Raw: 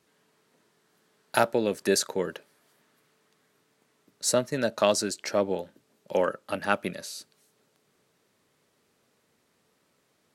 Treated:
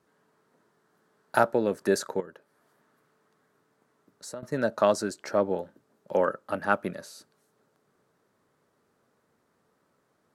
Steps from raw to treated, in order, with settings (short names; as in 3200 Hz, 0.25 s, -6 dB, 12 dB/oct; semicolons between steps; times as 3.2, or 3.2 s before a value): resonant high shelf 1900 Hz -7.5 dB, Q 1.5; 2.2–4.43 compressor 2.5:1, threshold -45 dBFS, peak gain reduction 17.5 dB